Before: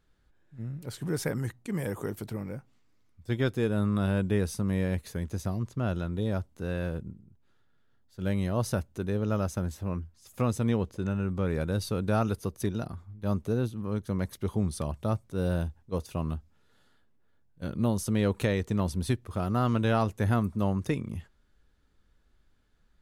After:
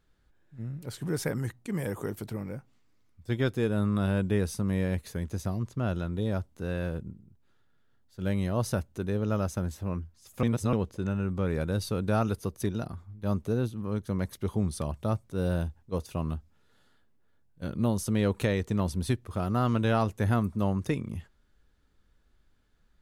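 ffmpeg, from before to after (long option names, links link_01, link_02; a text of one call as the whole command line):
ffmpeg -i in.wav -filter_complex "[0:a]asplit=3[link_01][link_02][link_03];[link_01]atrim=end=10.432[link_04];[link_02]atrim=start=10.428:end=10.732,asetpts=PTS-STARTPTS,areverse[link_05];[link_03]atrim=start=10.728[link_06];[link_04][link_05]acrossfade=duration=0.004:curve1=hsin:curve2=hsin[link_07];[link_07][link_06]acrossfade=duration=0.004:curve1=hsin:curve2=hsin" out.wav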